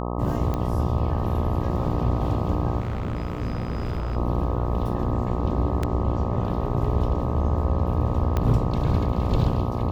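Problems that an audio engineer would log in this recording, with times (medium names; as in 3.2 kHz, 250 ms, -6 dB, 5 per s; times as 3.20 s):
buzz 60 Hz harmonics 21 -28 dBFS
0.54 s: pop -15 dBFS
2.80–4.17 s: clipped -23.5 dBFS
5.83 s: dropout 3.7 ms
8.37 s: pop -12 dBFS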